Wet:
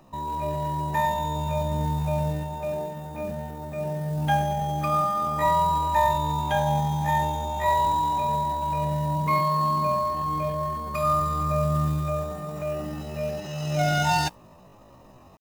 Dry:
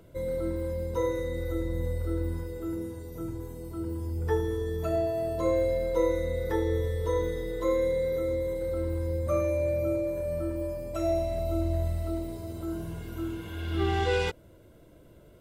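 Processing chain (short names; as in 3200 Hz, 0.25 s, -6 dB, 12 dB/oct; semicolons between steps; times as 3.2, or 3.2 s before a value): AGC gain up to 4 dB; modulation noise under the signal 22 dB; pitch shift +10.5 st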